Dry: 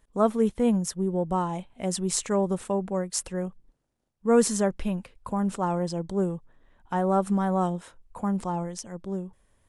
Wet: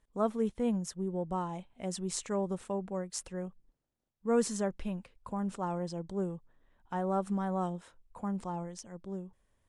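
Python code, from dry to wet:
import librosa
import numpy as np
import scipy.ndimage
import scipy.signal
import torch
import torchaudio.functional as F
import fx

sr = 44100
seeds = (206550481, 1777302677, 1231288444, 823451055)

y = scipy.signal.sosfilt(scipy.signal.butter(2, 9200.0, 'lowpass', fs=sr, output='sos'), x)
y = F.gain(torch.from_numpy(y), -8.0).numpy()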